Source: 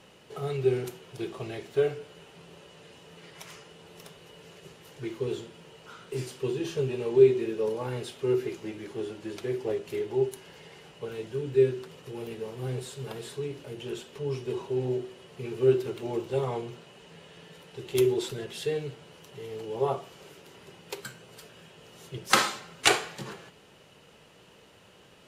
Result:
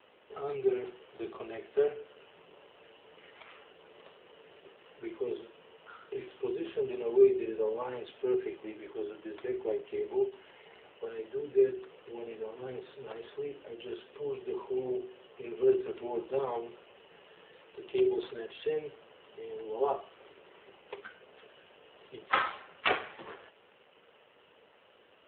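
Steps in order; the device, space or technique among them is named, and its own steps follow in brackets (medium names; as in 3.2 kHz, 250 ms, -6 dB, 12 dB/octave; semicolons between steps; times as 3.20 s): telephone (band-pass 400–3100 Hz; saturation -8 dBFS, distortion -27 dB; AMR-NB 7.4 kbps 8 kHz)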